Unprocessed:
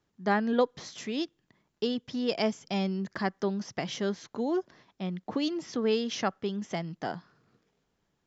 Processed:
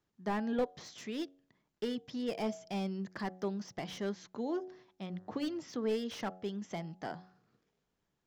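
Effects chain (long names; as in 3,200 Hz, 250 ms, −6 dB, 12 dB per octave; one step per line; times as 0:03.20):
0:05.10–0:05.63: hum with harmonics 100 Hz, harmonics 19, −60 dBFS −5 dB per octave
hum removal 92.39 Hz, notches 9
slew-rate limiting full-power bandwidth 50 Hz
level −6 dB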